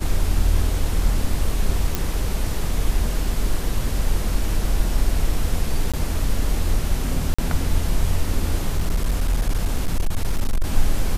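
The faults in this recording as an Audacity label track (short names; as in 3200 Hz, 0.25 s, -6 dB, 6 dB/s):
1.950000	1.950000	pop
5.920000	5.940000	gap 16 ms
7.340000	7.380000	gap 45 ms
8.760000	10.650000	clipped -15 dBFS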